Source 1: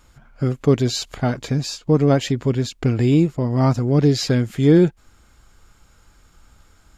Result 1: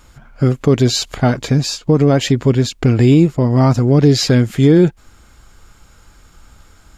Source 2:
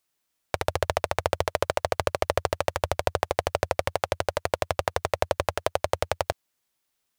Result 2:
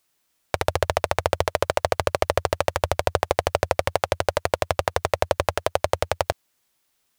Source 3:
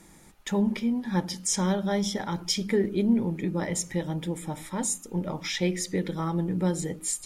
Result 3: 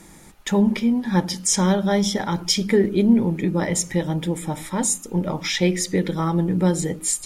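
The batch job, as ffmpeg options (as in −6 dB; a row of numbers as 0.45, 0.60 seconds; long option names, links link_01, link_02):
-af "alimiter=level_in=8dB:limit=-1dB:release=50:level=0:latency=1,volume=-1dB"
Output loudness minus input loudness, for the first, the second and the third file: +5.0, +3.5, +7.0 LU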